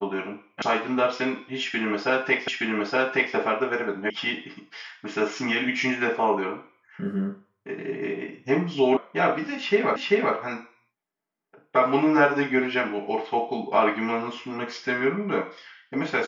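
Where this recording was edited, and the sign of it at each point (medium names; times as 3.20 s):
0.62 s: sound stops dead
2.48 s: repeat of the last 0.87 s
4.10 s: sound stops dead
8.97 s: sound stops dead
9.96 s: repeat of the last 0.39 s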